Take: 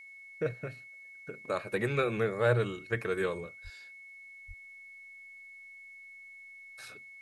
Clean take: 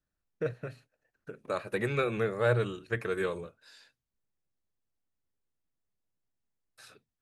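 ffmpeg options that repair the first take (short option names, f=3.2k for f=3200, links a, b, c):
-filter_complex "[0:a]bandreject=f=2.2k:w=30,asplit=3[a][b][c];[a]afade=t=out:st=3.63:d=0.02[d];[b]highpass=f=140:w=0.5412,highpass=f=140:w=1.3066,afade=t=in:st=3.63:d=0.02,afade=t=out:st=3.75:d=0.02[e];[c]afade=t=in:st=3.75:d=0.02[f];[d][e][f]amix=inputs=3:normalize=0,asplit=3[g][h][i];[g]afade=t=out:st=4.47:d=0.02[j];[h]highpass=f=140:w=0.5412,highpass=f=140:w=1.3066,afade=t=in:st=4.47:d=0.02,afade=t=out:st=4.59:d=0.02[k];[i]afade=t=in:st=4.59:d=0.02[l];[j][k][l]amix=inputs=3:normalize=0,agate=range=-21dB:threshold=-43dB,asetnsamples=n=441:p=0,asendcmd='4.39 volume volume -4dB',volume=0dB"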